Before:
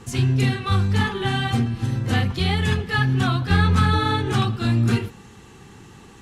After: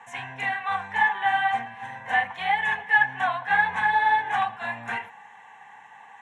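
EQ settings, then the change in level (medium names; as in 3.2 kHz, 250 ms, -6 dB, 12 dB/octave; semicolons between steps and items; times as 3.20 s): band-pass 450–6100 Hz; high-order bell 1.2 kHz +13.5 dB; static phaser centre 1.3 kHz, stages 6; -4.5 dB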